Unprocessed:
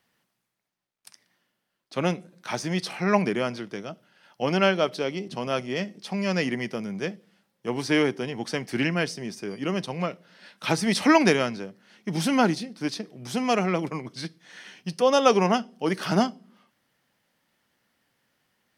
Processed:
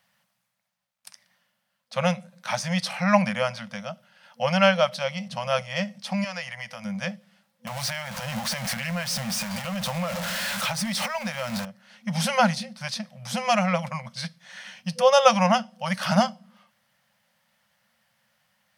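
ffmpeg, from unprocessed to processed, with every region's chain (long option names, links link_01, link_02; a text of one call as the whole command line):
ffmpeg -i in.wav -filter_complex "[0:a]asettb=1/sr,asplit=3[link_01][link_02][link_03];[link_01]atrim=end=6.244[link_04];[link_02]atrim=start=6.24:end=6.85,asetpts=PTS-STARTPTS,afade=type=in:duration=0.004:curve=qsin,afade=type=out:start_time=0.606:duration=0.004:curve=qsin,equalizer=frequency=210:width=1.3:gain=-13.5,bandreject=frequency=550:width=9.1,acompressor=threshold=-36dB:ratio=2:attack=3.2:release=140:knee=1:detection=peak[link_05];[link_03]atrim=start=6.846[link_06];[link_04][link_05]acrossfade=duration=0.004:curve1=hsin:curve2=qsin[link_07];[link_07][link_06]acrossfade=duration=0.004:curve1=qsin:curve2=hsin,asettb=1/sr,asplit=3[link_08][link_09][link_10];[link_08]atrim=end=7.674[link_11];[link_09]atrim=start=7.67:end=11.65,asetpts=PTS-STARTPTS,afade=type=in:duration=0.004:curve=qsin,afade=type=out:start_time=3.976:duration=0.004:curve=qsin,aeval=exprs='val(0)+0.5*0.0447*sgn(val(0))':channel_layout=same,acompressor=threshold=-27dB:ratio=6:attack=3.2:release=140:knee=1:detection=peak[link_12];[link_10]atrim=start=11.646[link_13];[link_11][link_12]acrossfade=duration=0.004:curve1=hsin:curve2=qsin[link_14];[link_14][link_13]acrossfade=duration=0.004:curve1=qsin:curve2=hsin,afftfilt=real='re*(1-between(b*sr/4096,230,500))':imag='im*(1-between(b*sr/4096,230,500))':win_size=4096:overlap=0.75,lowshelf=frequency=74:gain=-8.5,volume=3.5dB" out.wav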